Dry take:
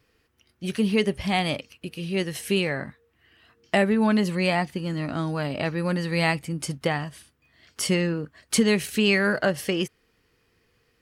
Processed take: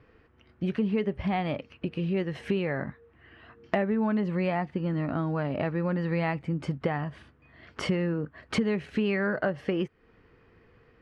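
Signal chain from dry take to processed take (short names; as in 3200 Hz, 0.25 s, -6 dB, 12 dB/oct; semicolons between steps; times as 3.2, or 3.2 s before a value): LPF 1700 Hz 12 dB/oct; compressor 3:1, threshold -38 dBFS, peak gain reduction 16.5 dB; gain +9 dB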